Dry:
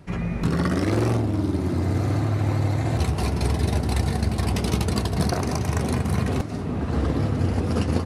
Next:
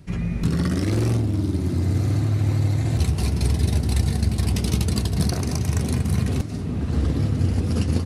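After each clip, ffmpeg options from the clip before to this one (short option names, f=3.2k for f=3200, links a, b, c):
-af "equalizer=f=880:w=0.43:g=-11,volume=3.5dB"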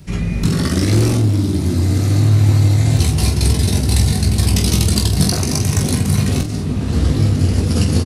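-filter_complex "[0:a]acrossover=split=600|3100[a][b][c];[c]acontrast=51[d];[a][b][d]amix=inputs=3:normalize=0,aecho=1:1:20|47:0.531|0.376,volume=5dB"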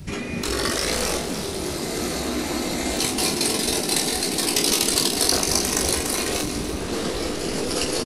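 -af "afftfilt=real='re*lt(hypot(re,im),0.501)':imag='im*lt(hypot(re,im),0.501)':win_size=1024:overlap=0.75,equalizer=f=66:w=1.5:g=3,aecho=1:1:293|586|879|1172|1465|1758:0.282|0.152|0.0822|0.0444|0.024|0.0129,volume=1dB"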